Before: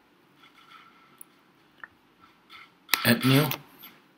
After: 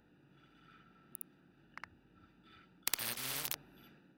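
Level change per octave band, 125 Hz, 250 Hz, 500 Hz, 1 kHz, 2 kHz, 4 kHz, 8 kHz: -28.5 dB, -29.0 dB, -23.5 dB, -16.0 dB, -16.5 dB, -13.0 dB, -4.0 dB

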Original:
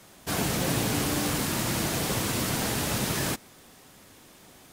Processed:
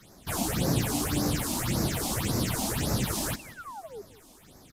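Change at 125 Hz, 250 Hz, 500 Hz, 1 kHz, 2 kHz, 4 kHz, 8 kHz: +1.0 dB, 0.0 dB, -2.0 dB, -2.0 dB, -5.0 dB, -3.0 dB, -1.5 dB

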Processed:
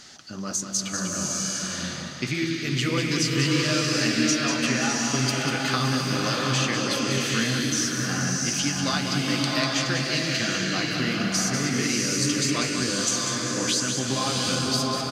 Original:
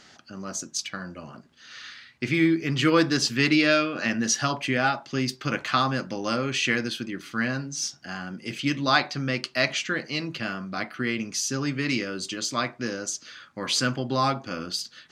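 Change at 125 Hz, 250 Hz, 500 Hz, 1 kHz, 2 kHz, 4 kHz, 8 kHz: +4.5 dB, +1.5 dB, -0.5 dB, -1.5 dB, 0.0 dB, +4.5 dB, +7.0 dB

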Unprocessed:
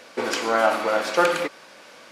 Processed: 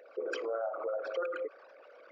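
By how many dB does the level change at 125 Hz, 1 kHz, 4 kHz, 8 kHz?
under -40 dB, -19.5 dB, -21.0 dB, under -25 dB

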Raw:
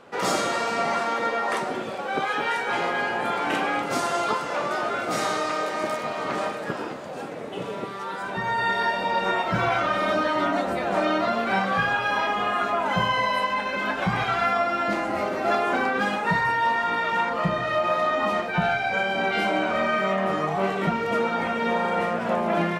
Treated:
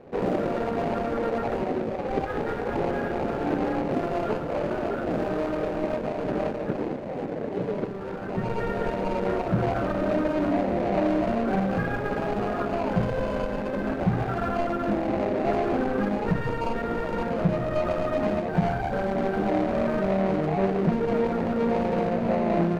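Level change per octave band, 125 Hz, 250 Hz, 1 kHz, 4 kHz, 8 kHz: +5.0 dB, +4.5 dB, -7.0 dB, -13.0 dB, under -15 dB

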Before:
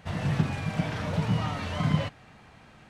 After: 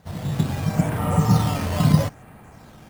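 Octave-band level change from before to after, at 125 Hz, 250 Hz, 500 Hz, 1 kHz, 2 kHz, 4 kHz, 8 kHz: +8.0 dB, +8.0 dB, +7.0 dB, +7.0 dB, +1.0 dB, +4.0 dB, +13.0 dB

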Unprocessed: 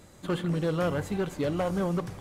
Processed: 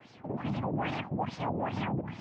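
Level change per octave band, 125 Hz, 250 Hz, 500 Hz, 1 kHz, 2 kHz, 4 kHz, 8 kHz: -4.0 dB, -4.5 dB, -8.5 dB, +1.5 dB, -2.0 dB, -3.5 dB, under -10 dB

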